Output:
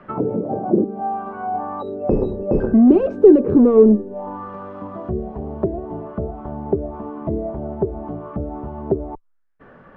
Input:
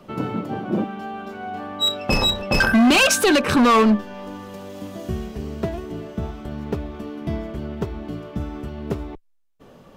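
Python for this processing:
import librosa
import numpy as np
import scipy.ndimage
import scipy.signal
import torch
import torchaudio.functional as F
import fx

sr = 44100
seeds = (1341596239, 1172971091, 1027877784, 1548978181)

y = fx.envelope_lowpass(x, sr, base_hz=400.0, top_hz=1800.0, q=4.0, full_db=-20.5, direction='down')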